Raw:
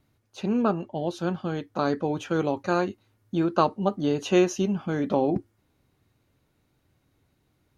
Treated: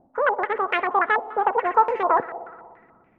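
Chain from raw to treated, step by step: Wiener smoothing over 25 samples; low shelf 180 Hz +7.5 dB; in parallel at +1 dB: compressor, threshold -30 dBFS, peak gain reduction 15.5 dB; on the sum: wide varispeed 2.44×; on a send: multi-head echo 60 ms, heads all three, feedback 60%, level -22 dB; on the sum: stepped low-pass 6.9 Hz 770–2300 Hz; gain -4.5 dB

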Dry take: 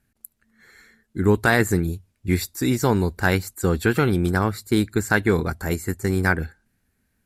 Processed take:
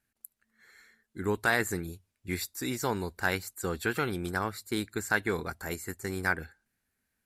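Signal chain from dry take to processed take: low shelf 380 Hz -10.5 dB; gain -6 dB

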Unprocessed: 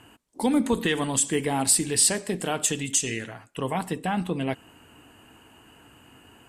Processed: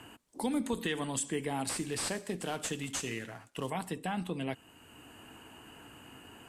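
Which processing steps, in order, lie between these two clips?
1.69–3.7 CVSD 64 kbps; three-band squash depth 40%; gain -8.5 dB

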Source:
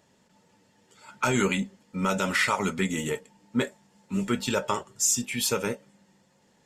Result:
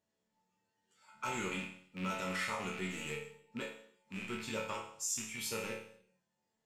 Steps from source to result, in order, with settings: rattling part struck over -38 dBFS, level -19 dBFS; resonator bank D2 major, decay 0.62 s; spectral noise reduction 8 dB; gain +2.5 dB

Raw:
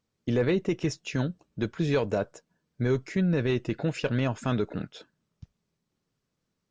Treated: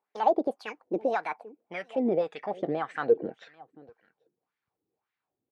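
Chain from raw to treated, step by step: speed glide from 183% -> 60%; small resonant body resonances 460/780/2300 Hz, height 6 dB; on a send: echo 0.791 s -22 dB; on the sum: wah 1.8 Hz 330–1900 Hz, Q 2.8; gain +5.5 dB

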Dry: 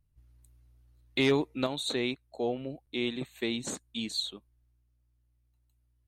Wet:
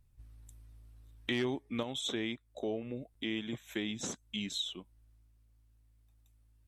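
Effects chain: varispeed -9%; compressor 2:1, threshold -47 dBFS, peak gain reduction 14 dB; gain +5.5 dB

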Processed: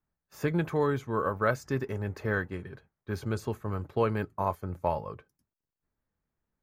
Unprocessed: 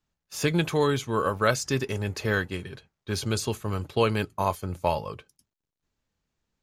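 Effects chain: band shelf 5500 Hz -13.5 dB 2.5 oct; gain -3.5 dB

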